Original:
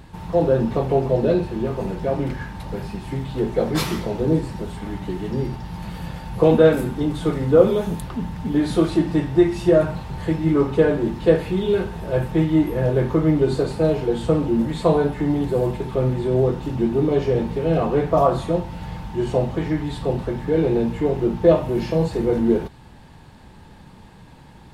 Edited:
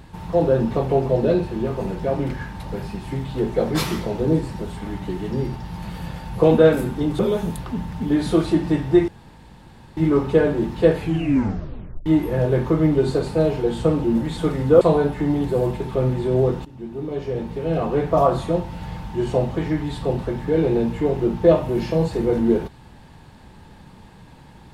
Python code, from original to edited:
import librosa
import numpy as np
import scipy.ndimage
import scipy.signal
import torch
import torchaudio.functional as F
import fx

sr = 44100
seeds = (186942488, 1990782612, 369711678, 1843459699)

y = fx.edit(x, sr, fx.move(start_s=7.19, length_s=0.44, to_s=14.81),
    fx.room_tone_fill(start_s=9.52, length_s=0.89),
    fx.tape_stop(start_s=11.43, length_s=1.07),
    fx.fade_in_from(start_s=16.65, length_s=1.57, floor_db=-19.0), tone=tone)